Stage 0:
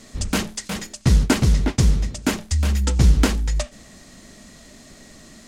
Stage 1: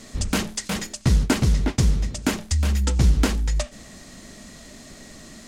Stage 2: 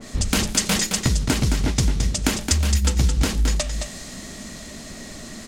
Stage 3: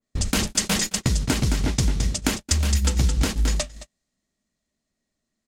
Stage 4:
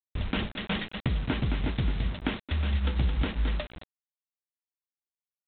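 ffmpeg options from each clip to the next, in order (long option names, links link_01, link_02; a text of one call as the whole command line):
ffmpeg -i in.wav -filter_complex "[0:a]asplit=2[link_01][link_02];[link_02]acompressor=threshold=-25dB:ratio=6,volume=2dB[link_03];[link_01][link_03]amix=inputs=2:normalize=0,asoftclip=type=hard:threshold=-4.5dB,volume=-5dB" out.wav
ffmpeg -i in.wav -filter_complex "[0:a]acompressor=threshold=-23dB:ratio=5,asplit=2[link_01][link_02];[link_02]aecho=0:1:218:0.473[link_03];[link_01][link_03]amix=inputs=2:normalize=0,adynamicequalizer=threshold=0.00562:dfrequency=2300:dqfactor=0.7:tfrequency=2300:tqfactor=0.7:attack=5:release=100:ratio=0.375:range=2.5:mode=boostabove:tftype=highshelf,volume=5dB" out.wav
ffmpeg -i in.wav -af "agate=range=-42dB:threshold=-23dB:ratio=16:detection=peak,volume=-1.5dB" out.wav
ffmpeg -i in.wav -af "aeval=exprs='val(0)+0.00447*(sin(2*PI*60*n/s)+sin(2*PI*2*60*n/s)/2+sin(2*PI*3*60*n/s)/3+sin(2*PI*4*60*n/s)/4+sin(2*PI*5*60*n/s)/5)':channel_layout=same,aresample=8000,acrusher=bits=5:mix=0:aa=0.000001,aresample=44100,volume=-6dB" out.wav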